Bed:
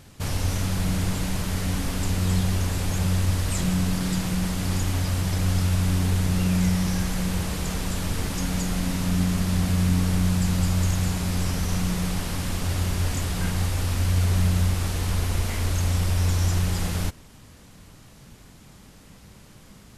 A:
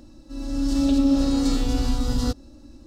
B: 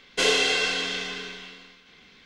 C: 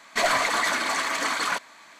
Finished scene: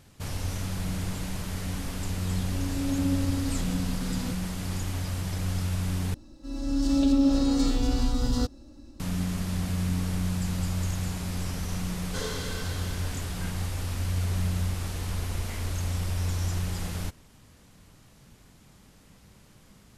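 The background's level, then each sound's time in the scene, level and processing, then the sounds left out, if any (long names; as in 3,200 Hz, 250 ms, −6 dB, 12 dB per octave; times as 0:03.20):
bed −6.5 dB
0:02.00: mix in A −12.5 dB + comb filter 7.5 ms, depth 47%
0:06.14: overwrite with A −2.5 dB
0:11.96: mix in B −9.5 dB + phaser with its sweep stopped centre 500 Hz, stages 8
not used: C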